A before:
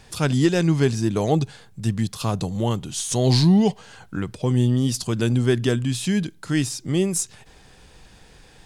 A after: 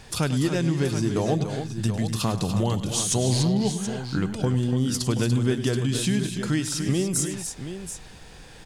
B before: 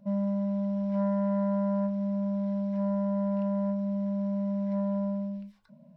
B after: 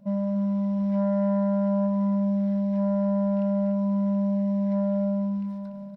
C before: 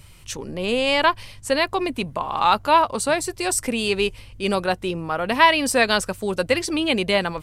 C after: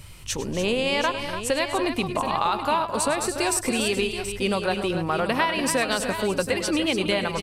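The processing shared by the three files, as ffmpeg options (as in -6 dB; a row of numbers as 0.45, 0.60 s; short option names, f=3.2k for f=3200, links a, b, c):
-filter_complex "[0:a]acompressor=threshold=-24dB:ratio=6,asplit=2[a][b];[b]aecho=0:1:102|245|290|728:0.211|0.178|0.355|0.299[c];[a][c]amix=inputs=2:normalize=0,volume=3dB"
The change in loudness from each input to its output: -3.0, +4.5, -3.5 LU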